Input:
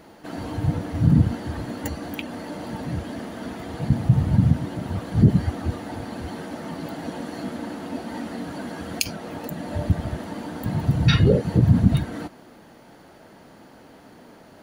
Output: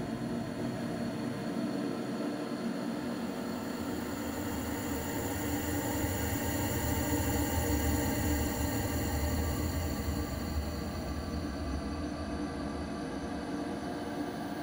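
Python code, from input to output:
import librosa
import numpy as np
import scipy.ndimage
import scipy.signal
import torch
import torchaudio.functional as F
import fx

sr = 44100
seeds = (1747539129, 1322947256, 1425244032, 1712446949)

p1 = fx.dereverb_blind(x, sr, rt60_s=0.64)
p2 = fx.paulstretch(p1, sr, seeds[0], factor=39.0, window_s=0.25, from_s=1.68)
p3 = p2 + fx.echo_single(p2, sr, ms=589, db=-4.5, dry=0)
p4 = fx.end_taper(p3, sr, db_per_s=170.0)
y = F.gain(torch.from_numpy(p4), -3.0).numpy()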